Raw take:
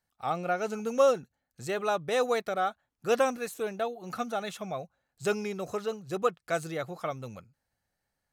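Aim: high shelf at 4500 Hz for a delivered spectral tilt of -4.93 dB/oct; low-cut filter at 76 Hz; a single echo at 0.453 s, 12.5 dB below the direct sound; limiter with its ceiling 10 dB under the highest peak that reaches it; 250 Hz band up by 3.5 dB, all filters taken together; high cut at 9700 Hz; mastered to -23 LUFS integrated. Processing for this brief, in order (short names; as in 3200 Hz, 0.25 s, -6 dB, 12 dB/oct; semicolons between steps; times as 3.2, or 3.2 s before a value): HPF 76 Hz; LPF 9700 Hz; bell 250 Hz +4.5 dB; high shelf 4500 Hz -6 dB; limiter -22 dBFS; echo 0.453 s -12.5 dB; gain +10.5 dB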